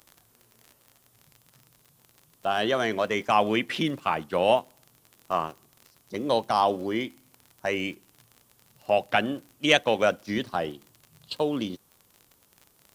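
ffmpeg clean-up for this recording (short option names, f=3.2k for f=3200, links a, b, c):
-af "adeclick=t=4,agate=range=-21dB:threshold=-55dB"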